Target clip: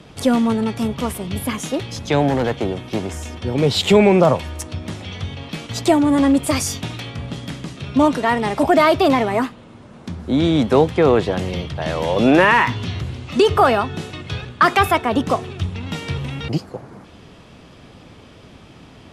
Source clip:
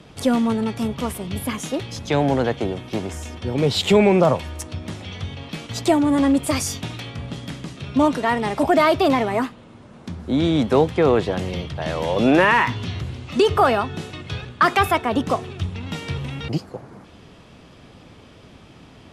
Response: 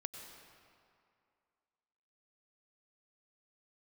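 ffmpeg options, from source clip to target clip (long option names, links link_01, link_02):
-filter_complex "[0:a]asettb=1/sr,asplit=3[link_01][link_02][link_03];[link_01]atrim=end=2.284[link_04];[link_02]atrim=start=2.28:end=2.84,asetpts=PTS-STARTPTS,afade=type=in:duration=0.004:curve=qsin,afade=type=out:start_time=0.556:duration=0.004:curve=qsin,asoftclip=type=hard:threshold=-16.5dB[link_05];[link_03]atrim=start=2.836[link_06];[link_04][link_05]acrossfade=duration=0.004:curve1=hsin:curve2=qsin[link_07];[link_07][link_06]acrossfade=duration=0.004:curve1=qsin:curve2=hsin,volume=2.5dB"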